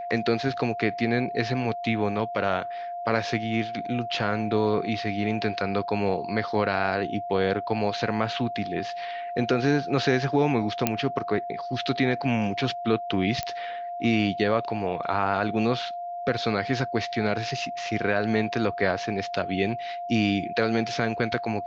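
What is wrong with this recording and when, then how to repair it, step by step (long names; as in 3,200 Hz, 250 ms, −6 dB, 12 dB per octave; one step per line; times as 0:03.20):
whistle 700 Hz −31 dBFS
0:10.87: click −6 dBFS
0:13.43: click −14 dBFS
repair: click removal
notch filter 700 Hz, Q 30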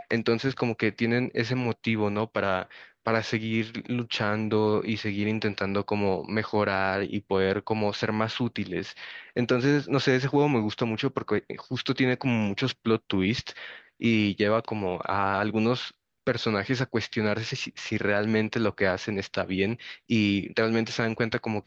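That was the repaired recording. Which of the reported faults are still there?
none of them is left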